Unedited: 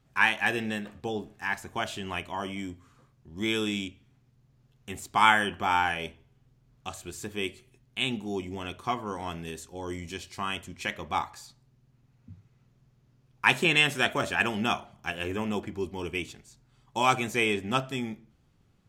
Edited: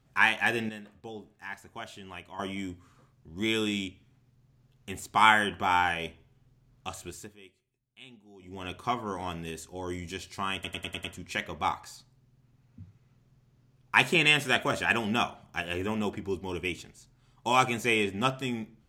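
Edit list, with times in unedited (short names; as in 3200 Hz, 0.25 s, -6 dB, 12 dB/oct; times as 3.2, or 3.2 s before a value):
0.69–2.39 gain -9.5 dB
7.05–8.71 dip -21 dB, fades 0.32 s
10.54 stutter 0.10 s, 6 plays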